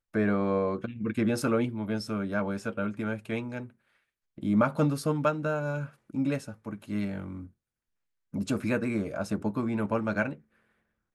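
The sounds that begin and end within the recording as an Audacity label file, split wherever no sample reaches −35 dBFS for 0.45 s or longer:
4.380000	7.430000	sound
8.340000	10.330000	sound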